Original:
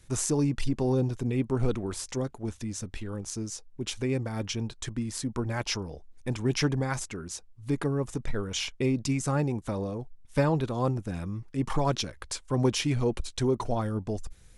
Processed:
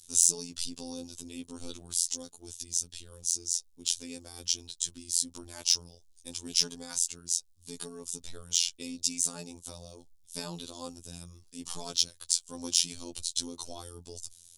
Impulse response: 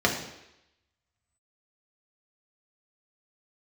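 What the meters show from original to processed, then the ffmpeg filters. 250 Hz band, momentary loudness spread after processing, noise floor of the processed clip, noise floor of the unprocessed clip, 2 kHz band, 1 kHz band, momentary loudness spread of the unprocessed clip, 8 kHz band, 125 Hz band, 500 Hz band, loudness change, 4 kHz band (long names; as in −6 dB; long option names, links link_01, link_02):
−14.5 dB, 17 LU, −60 dBFS, −54 dBFS, −11.5 dB, −15.0 dB, 10 LU, +9.5 dB, −22.0 dB, −16.5 dB, 0.0 dB, +5.5 dB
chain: -af "afftfilt=real='hypot(re,im)*cos(PI*b)':imag='0':win_size=2048:overlap=0.75,aexciter=amount=11.5:drive=6.3:freq=3100,volume=-11.5dB"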